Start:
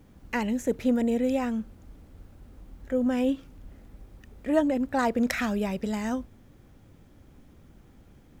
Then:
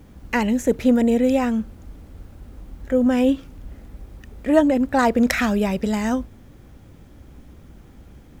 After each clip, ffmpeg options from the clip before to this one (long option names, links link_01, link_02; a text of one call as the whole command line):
ffmpeg -i in.wav -af "equalizer=frequency=61:width_type=o:width=0.29:gain=7.5,volume=7.5dB" out.wav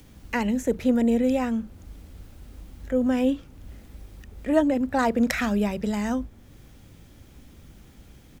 ffmpeg -i in.wav -filter_complex "[0:a]acrossover=split=240|2200[link_01][link_02][link_03];[link_01]asplit=2[link_04][link_05];[link_05]adelay=39,volume=-4dB[link_06];[link_04][link_06]amix=inputs=2:normalize=0[link_07];[link_03]acompressor=mode=upward:threshold=-47dB:ratio=2.5[link_08];[link_07][link_02][link_08]amix=inputs=3:normalize=0,volume=-5dB" out.wav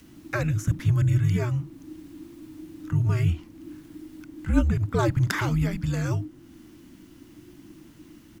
ffmpeg -i in.wav -af "afreqshift=-360" out.wav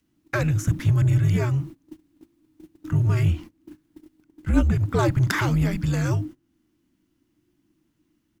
ffmpeg -i in.wav -filter_complex "[0:a]agate=range=-24dB:threshold=-38dB:ratio=16:detection=peak,asplit=2[link_01][link_02];[link_02]volume=25dB,asoftclip=hard,volume=-25dB,volume=-4.5dB[link_03];[link_01][link_03]amix=inputs=2:normalize=0" out.wav